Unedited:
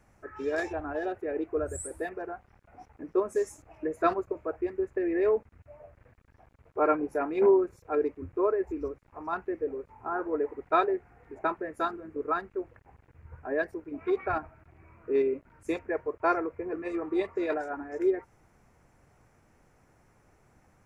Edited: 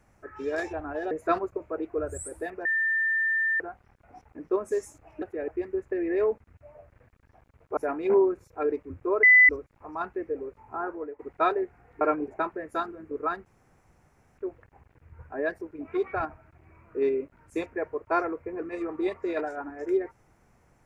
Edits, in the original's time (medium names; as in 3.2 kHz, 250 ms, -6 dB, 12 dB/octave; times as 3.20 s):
1.11–1.37 s: swap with 3.86–4.53 s
2.24 s: add tone 1.79 kHz -22.5 dBFS 0.95 s
6.82–7.09 s: move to 11.33 s
8.55–8.81 s: bleep 2 kHz -12 dBFS
10.13–10.51 s: fade out, to -18.5 dB
12.51 s: insert room tone 0.92 s